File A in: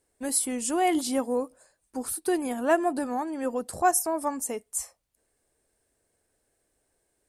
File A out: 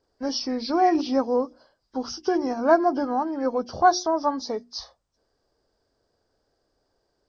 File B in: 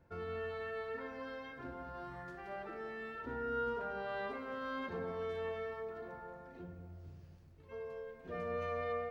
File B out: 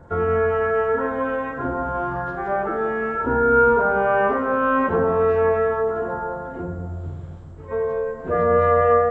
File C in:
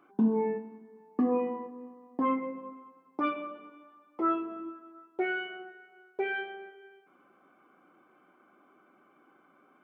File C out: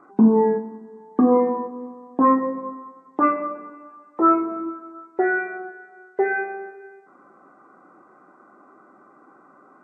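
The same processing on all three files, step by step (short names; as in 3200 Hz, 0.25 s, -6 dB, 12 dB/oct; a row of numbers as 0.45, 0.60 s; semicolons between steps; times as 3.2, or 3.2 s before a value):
nonlinear frequency compression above 1500 Hz 1.5:1; resonant high shelf 1700 Hz -7 dB, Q 1.5; notches 60/120/180/240/300/360 Hz; normalise peaks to -6 dBFS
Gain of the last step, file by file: +4.0, +21.5, +11.0 dB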